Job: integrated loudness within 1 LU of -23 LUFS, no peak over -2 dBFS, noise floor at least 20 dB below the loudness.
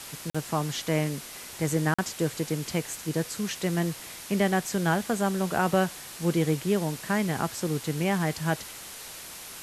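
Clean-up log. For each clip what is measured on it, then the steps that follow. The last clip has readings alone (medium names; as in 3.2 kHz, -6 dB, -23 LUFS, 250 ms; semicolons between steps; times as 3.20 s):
dropouts 2; longest dropout 45 ms; noise floor -42 dBFS; noise floor target -49 dBFS; loudness -28.5 LUFS; peak level -11.0 dBFS; loudness target -23.0 LUFS
-> interpolate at 0.30/1.94 s, 45 ms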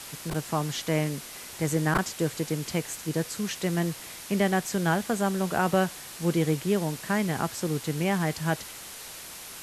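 dropouts 0; noise floor -42 dBFS; noise floor target -48 dBFS
-> noise reduction 6 dB, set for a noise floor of -42 dBFS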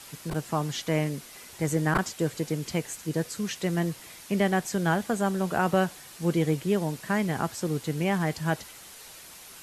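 noise floor -47 dBFS; noise floor target -49 dBFS
-> noise reduction 6 dB, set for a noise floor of -47 dBFS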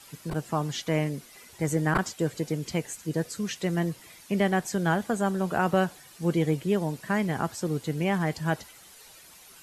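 noise floor -52 dBFS; loudness -28.5 LUFS; peak level -11.0 dBFS; loudness target -23.0 LUFS
-> trim +5.5 dB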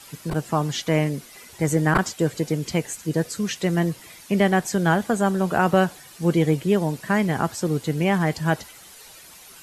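loudness -23.0 LUFS; peak level -5.5 dBFS; noise floor -46 dBFS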